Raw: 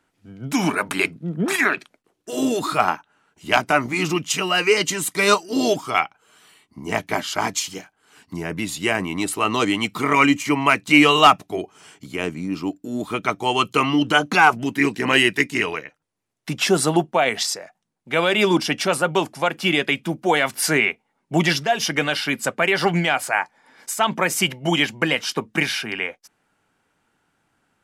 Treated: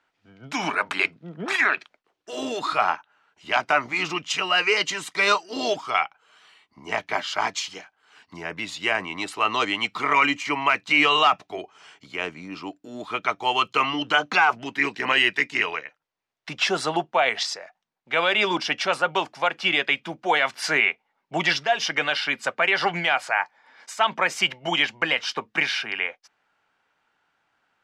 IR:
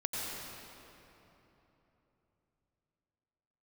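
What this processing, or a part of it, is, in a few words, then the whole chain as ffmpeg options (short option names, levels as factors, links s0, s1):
DJ mixer with the lows and highs turned down: -filter_complex "[0:a]acrossover=split=540 5800:gain=0.224 1 0.0631[s0][s1][s2];[s0][s1][s2]amix=inputs=3:normalize=0,alimiter=limit=0.398:level=0:latency=1:release=16"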